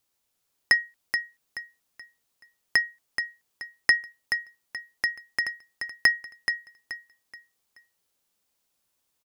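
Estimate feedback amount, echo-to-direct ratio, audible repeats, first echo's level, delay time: 32%, -6.5 dB, 3, -7.0 dB, 428 ms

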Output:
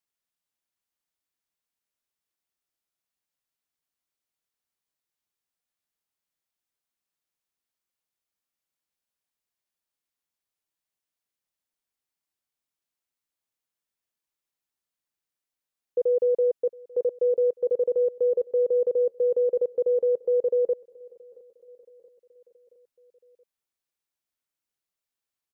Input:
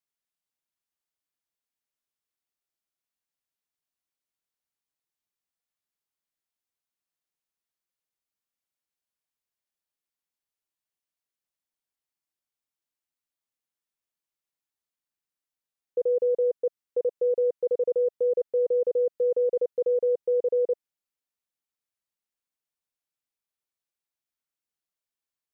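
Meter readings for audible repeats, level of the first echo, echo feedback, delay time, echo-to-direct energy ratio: 3, -23.5 dB, 59%, 675 ms, -21.5 dB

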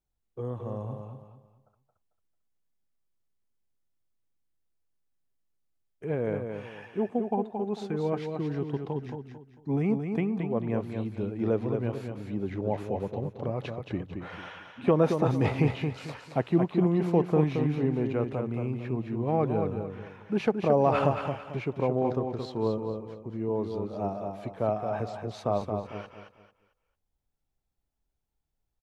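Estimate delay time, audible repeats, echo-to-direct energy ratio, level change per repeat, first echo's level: 223 ms, 3, -5.5 dB, -10.0 dB, -6.0 dB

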